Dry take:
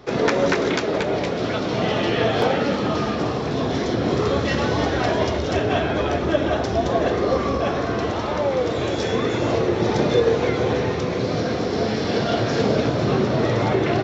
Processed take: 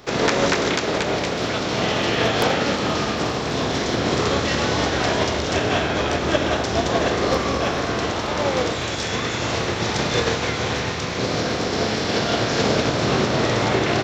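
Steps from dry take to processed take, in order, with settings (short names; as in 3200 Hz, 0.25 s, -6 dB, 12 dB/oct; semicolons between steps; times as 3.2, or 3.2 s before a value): spectral contrast lowered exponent 0.66; 8.74–11.18 bell 400 Hz -5.5 dB 2 oct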